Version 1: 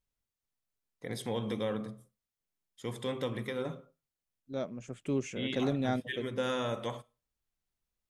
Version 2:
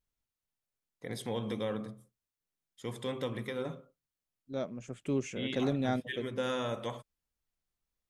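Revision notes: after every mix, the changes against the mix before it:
reverb: off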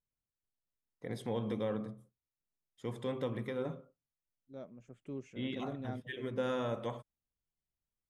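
second voice -11.0 dB; master: add treble shelf 2.2 kHz -10 dB

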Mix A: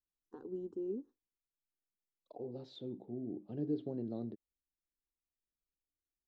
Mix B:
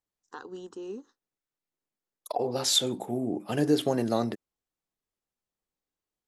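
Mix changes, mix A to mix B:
second voice: remove four-pole ladder low-pass 4.4 kHz, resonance 65%; master: remove FFT filter 360 Hz 0 dB, 1.2 kHz -22 dB, 3.6 kHz -29 dB

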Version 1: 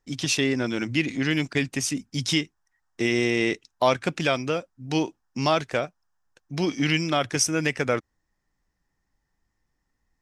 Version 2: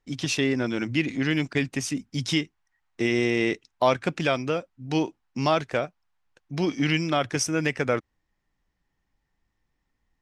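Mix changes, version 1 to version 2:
second voice: remove brick-wall FIR band-stop 1.9–4.8 kHz; master: add treble shelf 4 kHz -6.5 dB

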